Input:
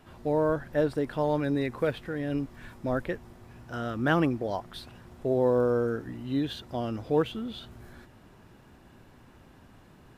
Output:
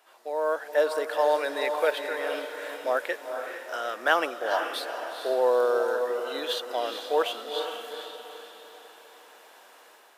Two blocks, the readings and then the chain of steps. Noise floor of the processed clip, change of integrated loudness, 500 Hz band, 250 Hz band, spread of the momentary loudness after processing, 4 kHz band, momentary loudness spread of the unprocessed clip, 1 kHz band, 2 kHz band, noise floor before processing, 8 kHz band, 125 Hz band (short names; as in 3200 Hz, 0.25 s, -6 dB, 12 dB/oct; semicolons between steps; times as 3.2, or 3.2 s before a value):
-54 dBFS, +1.5 dB, +3.0 dB, -12.5 dB, 13 LU, +9.0 dB, 14 LU, +6.0 dB, +7.0 dB, -55 dBFS, n/a, under -35 dB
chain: high shelf 4800 Hz +7 dB; AGC gain up to 9 dB; HPF 510 Hz 24 dB/oct; diffused feedback echo 0.454 s, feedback 44%, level -6.5 dB; gain -3 dB